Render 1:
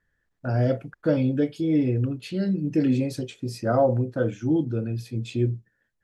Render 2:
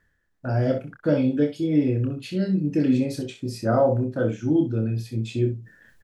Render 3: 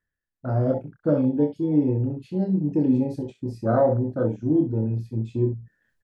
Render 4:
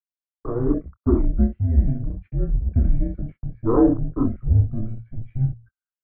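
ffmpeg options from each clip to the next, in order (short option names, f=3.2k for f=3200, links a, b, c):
-af "aecho=1:1:27|63:0.473|0.316,areverse,acompressor=mode=upward:threshold=-39dB:ratio=2.5,areverse"
-af "afwtdn=0.0282"
-af "agate=range=-35dB:threshold=-40dB:ratio=16:detection=peak,highpass=f=170:t=q:w=0.5412,highpass=f=170:t=q:w=1.307,lowpass=f=2.1k:t=q:w=0.5176,lowpass=f=2.1k:t=q:w=0.7071,lowpass=f=2.1k:t=q:w=1.932,afreqshift=-230,volume=4dB"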